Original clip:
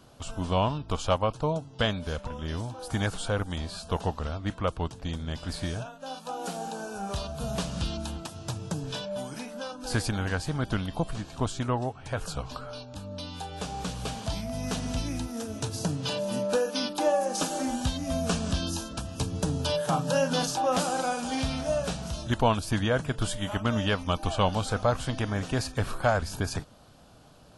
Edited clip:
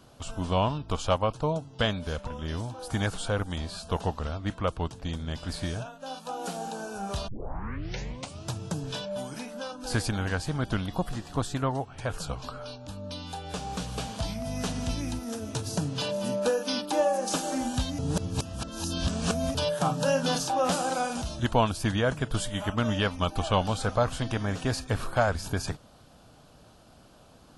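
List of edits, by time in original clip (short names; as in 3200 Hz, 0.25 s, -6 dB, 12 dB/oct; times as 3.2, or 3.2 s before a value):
7.28 tape start 1.18 s
10.88–11.88 speed 108%
18.06–19.62 reverse
21.29–22.09 cut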